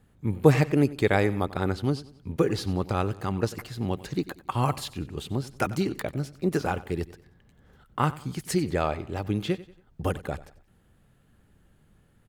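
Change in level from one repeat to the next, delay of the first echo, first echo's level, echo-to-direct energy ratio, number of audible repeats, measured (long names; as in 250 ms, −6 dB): −8.0 dB, 93 ms, −18.0 dB, −17.5 dB, 3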